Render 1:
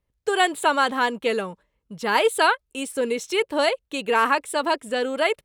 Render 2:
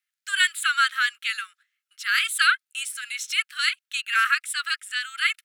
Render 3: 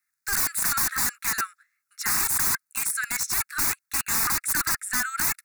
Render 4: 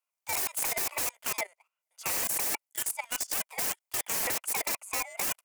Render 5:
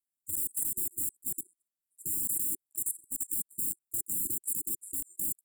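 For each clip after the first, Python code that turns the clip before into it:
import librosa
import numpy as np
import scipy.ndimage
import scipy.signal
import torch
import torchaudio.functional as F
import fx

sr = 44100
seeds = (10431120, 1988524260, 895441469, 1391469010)

y1 = scipy.signal.sosfilt(scipy.signal.butter(16, 1300.0, 'highpass', fs=sr, output='sos'), x)
y1 = F.gain(torch.from_numpy(y1), 3.5).numpy()
y2 = (np.mod(10.0 ** (24.5 / 20.0) * y1 + 1.0, 2.0) - 1.0) / 10.0 ** (24.5 / 20.0)
y2 = fx.fixed_phaser(y2, sr, hz=1300.0, stages=4)
y2 = F.gain(torch.from_numpy(y2), 8.0).numpy()
y3 = y2 * np.sin(2.0 * np.pi * 710.0 * np.arange(len(y2)) / sr)
y3 = fx.level_steps(y3, sr, step_db=15)
y4 = fx.brickwall_bandstop(y3, sr, low_hz=370.0, high_hz=7100.0)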